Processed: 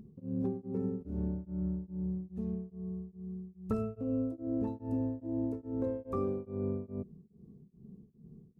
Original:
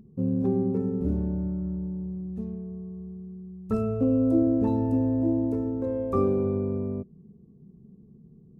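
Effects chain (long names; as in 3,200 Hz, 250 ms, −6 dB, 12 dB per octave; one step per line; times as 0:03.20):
downward compressor, threshold −29 dBFS, peak gain reduction 11 dB
tremolo along a rectified sine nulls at 2.4 Hz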